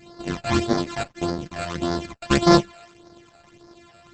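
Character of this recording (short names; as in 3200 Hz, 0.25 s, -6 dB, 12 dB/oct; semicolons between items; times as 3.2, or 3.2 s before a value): a buzz of ramps at a fixed pitch in blocks of 128 samples; phasing stages 12, 1.7 Hz, lowest notch 320–2800 Hz; Opus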